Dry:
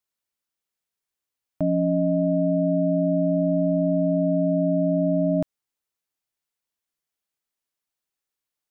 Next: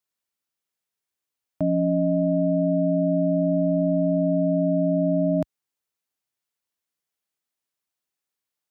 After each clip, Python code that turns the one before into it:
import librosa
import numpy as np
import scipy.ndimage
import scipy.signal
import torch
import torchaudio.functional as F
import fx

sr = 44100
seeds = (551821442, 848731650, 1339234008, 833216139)

y = scipy.signal.sosfilt(scipy.signal.butter(2, 63.0, 'highpass', fs=sr, output='sos'), x)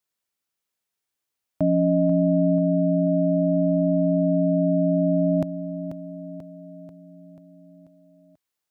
y = fx.echo_feedback(x, sr, ms=488, feedback_pct=56, wet_db=-10)
y = F.gain(torch.from_numpy(y), 2.0).numpy()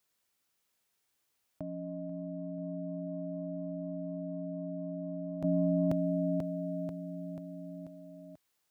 y = fx.over_compress(x, sr, threshold_db=-32.0, ratio=-1.0)
y = F.gain(torch.from_numpy(y), -4.0).numpy()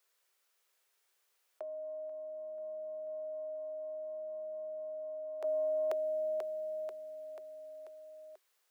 y = scipy.signal.sosfilt(scipy.signal.cheby1(6, 3, 370.0, 'highpass', fs=sr, output='sos'), x)
y = F.gain(torch.from_numpy(y), 4.5).numpy()